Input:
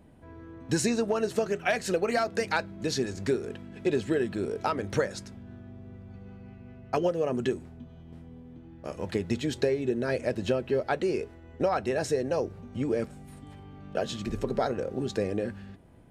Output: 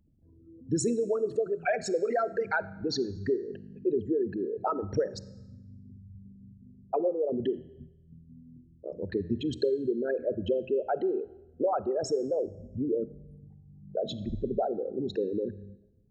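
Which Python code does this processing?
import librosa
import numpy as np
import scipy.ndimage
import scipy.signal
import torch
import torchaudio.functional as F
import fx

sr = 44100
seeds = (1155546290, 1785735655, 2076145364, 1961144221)

y = fx.envelope_sharpen(x, sr, power=3.0)
y = fx.noise_reduce_blind(y, sr, reduce_db=10)
y = fx.rev_freeverb(y, sr, rt60_s=1.0, hf_ratio=1.0, predelay_ms=5, drr_db=17.0)
y = F.gain(torch.from_numpy(y), -1.0).numpy()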